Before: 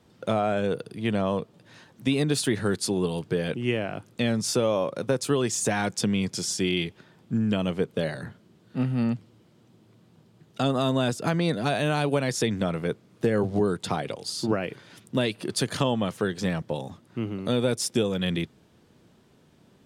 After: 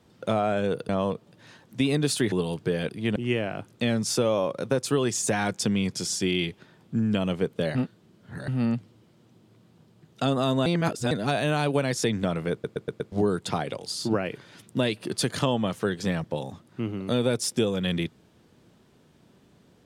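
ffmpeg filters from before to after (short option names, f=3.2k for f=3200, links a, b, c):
-filter_complex "[0:a]asplit=14[a][b][c][d][e][f][g][h][i][j][k][l][m][n];[a]atrim=end=0.892[o];[b]atrim=start=1.158:end=2.592[p];[c]atrim=start=2.968:end=3.542[q];[d]atrim=start=0.888:end=1.162[r];[e]atrim=start=3.538:end=8.132[s];[f]atrim=start=8.128:end=8.862,asetpts=PTS-STARTPTS,areverse[t];[g]atrim=start=8.858:end=11.042[u];[h]atrim=start=11.038:end=11.492,asetpts=PTS-STARTPTS,areverse[v];[i]atrim=start=11.488:end=13.022[w];[j]atrim=start=12.898:end=13.022[x];[k]atrim=start=12.898:end=13.022[y];[l]atrim=start=12.898:end=13.022[z];[m]atrim=start=12.898:end=13.022[aa];[n]atrim=start=13.498[ab];[o][p]acrossfade=d=0.004:c1=hsin:c2=hsin[ac];[ac][q]acrossfade=d=0.004:c1=hsin:c2=hsin[ad];[ad][r]acrossfade=d=0.004:c1=hsin:c2=hsin[ae];[ae][s]acrossfade=d=0.004:c1=hsin:c2=hsin[af];[af][t]acrossfade=d=0.004:c1=hsin:c2=hsin[ag];[ag][u]acrossfade=d=0.004:c1=hsin:c2=hsin[ah];[ah][v]acrossfade=d=0.004:c1=hsin:c2=hsin[ai];[ai][w]acrossfade=d=0.004:c1=hsin:c2=hsin[aj];[aj][x]acrossfade=d=0.004:c1=hsin:c2=hsin[ak];[ak][y]acrossfade=d=0.004:c1=hsin:c2=hsin[al];[al][z]acrossfade=d=0.004:c1=hsin:c2=hsin[am];[am][aa]acrossfade=d=0.004:c1=hsin:c2=hsin[an];[an][ab]acrossfade=d=0.004:c1=hsin:c2=hsin"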